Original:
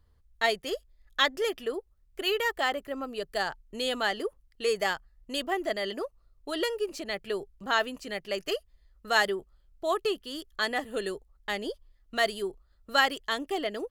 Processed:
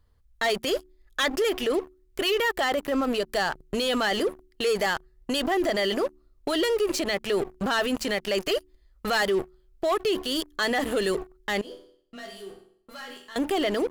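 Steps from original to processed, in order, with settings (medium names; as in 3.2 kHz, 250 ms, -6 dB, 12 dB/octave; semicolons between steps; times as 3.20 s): de-hum 73.93 Hz, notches 5; waveshaping leveller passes 3; peak limiter -25.5 dBFS, peak gain reduction 16 dB; 11.61–13.36 s: chord resonator E2 minor, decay 0.58 s; trim +7 dB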